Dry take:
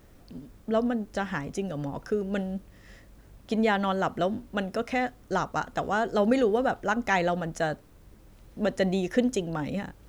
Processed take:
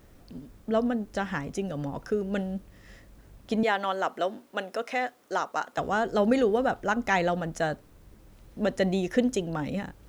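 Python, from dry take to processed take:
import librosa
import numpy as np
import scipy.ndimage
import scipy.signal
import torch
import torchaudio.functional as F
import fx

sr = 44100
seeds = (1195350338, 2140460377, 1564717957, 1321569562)

y = fx.highpass(x, sr, hz=400.0, slope=12, at=(3.63, 5.78))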